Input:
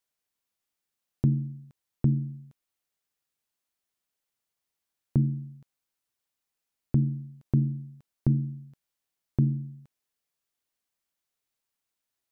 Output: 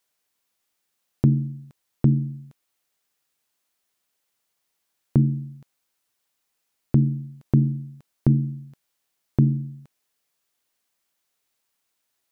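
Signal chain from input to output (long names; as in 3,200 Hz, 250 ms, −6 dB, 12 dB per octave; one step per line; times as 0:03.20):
low-shelf EQ 170 Hz −6.5 dB
level +9 dB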